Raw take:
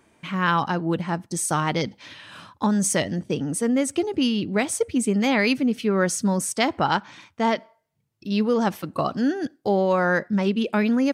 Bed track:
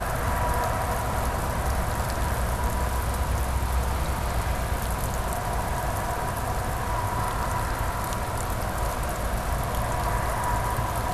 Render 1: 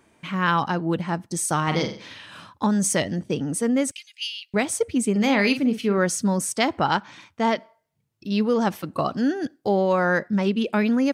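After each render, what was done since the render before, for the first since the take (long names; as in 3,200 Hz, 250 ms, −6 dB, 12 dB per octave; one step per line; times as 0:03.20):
0:01.63–0:02.26: flutter between parallel walls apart 7.8 metres, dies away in 0.43 s
0:03.91–0:04.54: Butterworth high-pass 2,200 Hz
0:05.11–0:05.98: double-tracking delay 44 ms −9.5 dB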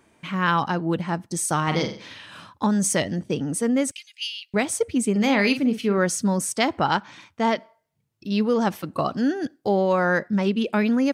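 no processing that can be heard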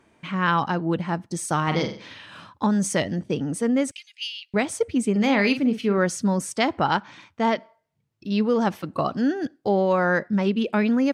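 high-shelf EQ 7,900 Hz −11 dB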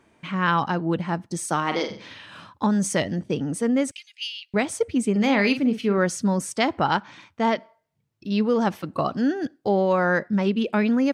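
0:01.43–0:01.89: high-pass filter 130 Hz → 310 Hz 24 dB per octave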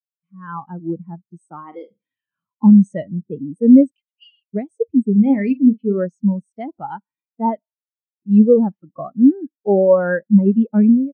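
automatic gain control gain up to 14 dB
every bin expanded away from the loudest bin 2.5 to 1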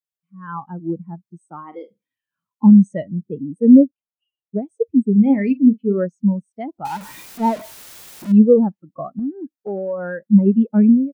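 0:03.65–0:04.62: low-pass filter 1,400 Hz → 1,100 Hz 24 dB per octave
0:06.85–0:08.32: converter with a step at zero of −29 dBFS
0:09.19–0:10.21: downward compressor 3 to 1, threshold −26 dBFS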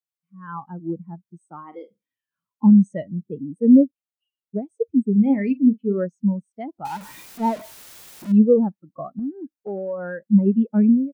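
level −3.5 dB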